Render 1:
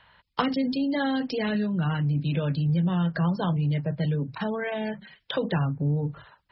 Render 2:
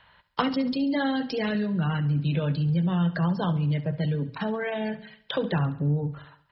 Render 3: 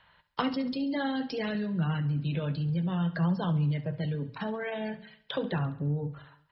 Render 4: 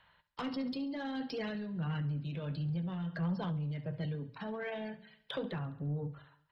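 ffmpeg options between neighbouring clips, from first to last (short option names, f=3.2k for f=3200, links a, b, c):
-af "aecho=1:1:69|138|207|276|345:0.168|0.0856|0.0437|0.0223|0.0114"
-af "flanger=delay=5.3:depth=4.4:regen=80:speed=0.6:shape=triangular"
-af "asoftclip=type=tanh:threshold=-23.5dB,tremolo=f=1.5:d=0.35,volume=-4dB"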